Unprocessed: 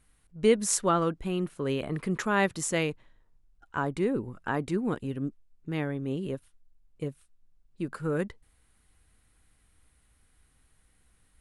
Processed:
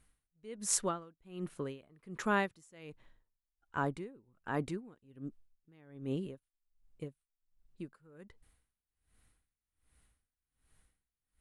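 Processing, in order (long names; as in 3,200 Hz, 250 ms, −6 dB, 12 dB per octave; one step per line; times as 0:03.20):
tremolo with a sine in dB 1.3 Hz, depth 28 dB
level −3 dB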